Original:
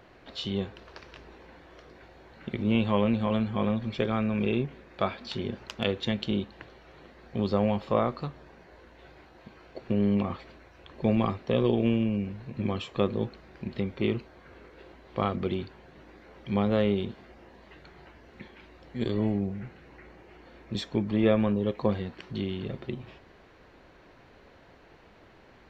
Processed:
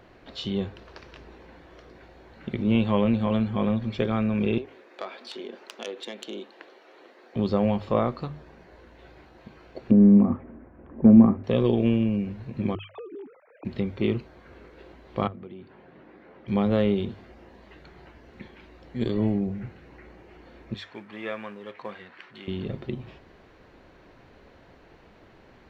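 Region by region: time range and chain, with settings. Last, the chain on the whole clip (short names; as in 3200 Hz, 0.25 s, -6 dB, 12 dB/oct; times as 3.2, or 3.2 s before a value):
4.58–7.36 self-modulated delay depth 0.093 ms + HPF 320 Hz 24 dB/oct + compressor 2:1, threshold -37 dBFS
9.91–11.44 hard clip -14.5 dBFS + Bessel low-pass 1200 Hz, order 8 + bell 240 Hz +13 dB 0.61 oct
12.75–13.65 sine-wave speech + air absorption 190 m + compressor 16:1, threshold -38 dBFS
15.27–16.48 compressor 2.5:1, threshold -46 dBFS + BPF 140–2600 Hz
20.74–22.48 G.711 law mismatch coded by mu + band-pass 1800 Hz, Q 1.3
whole clip: low shelf 440 Hz +4 dB; notches 50/100/150 Hz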